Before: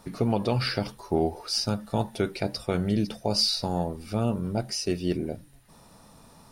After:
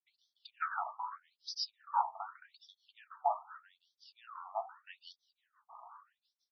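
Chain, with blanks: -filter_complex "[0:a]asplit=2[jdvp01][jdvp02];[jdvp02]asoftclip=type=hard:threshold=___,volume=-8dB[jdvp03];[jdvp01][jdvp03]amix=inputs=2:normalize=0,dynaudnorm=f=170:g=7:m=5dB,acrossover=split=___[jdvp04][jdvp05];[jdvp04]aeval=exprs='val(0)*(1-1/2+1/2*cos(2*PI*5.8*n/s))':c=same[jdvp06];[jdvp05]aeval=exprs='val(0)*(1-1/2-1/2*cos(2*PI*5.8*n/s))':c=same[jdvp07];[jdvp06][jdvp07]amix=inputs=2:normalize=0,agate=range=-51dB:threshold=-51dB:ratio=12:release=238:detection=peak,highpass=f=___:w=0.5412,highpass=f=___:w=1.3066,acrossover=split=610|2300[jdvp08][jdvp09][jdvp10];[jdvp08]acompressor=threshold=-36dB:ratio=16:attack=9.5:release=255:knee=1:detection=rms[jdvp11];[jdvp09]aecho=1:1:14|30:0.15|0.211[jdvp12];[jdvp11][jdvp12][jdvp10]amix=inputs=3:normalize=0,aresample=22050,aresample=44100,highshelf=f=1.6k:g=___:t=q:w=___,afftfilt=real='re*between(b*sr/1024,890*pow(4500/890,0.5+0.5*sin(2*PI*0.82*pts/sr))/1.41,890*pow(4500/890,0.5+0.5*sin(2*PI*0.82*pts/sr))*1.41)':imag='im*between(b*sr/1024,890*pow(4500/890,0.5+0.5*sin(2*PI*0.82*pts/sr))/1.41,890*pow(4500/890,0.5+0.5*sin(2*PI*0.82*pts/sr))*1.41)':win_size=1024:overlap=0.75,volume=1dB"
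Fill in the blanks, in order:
-28.5dB, 920, 41, 41, -10.5, 3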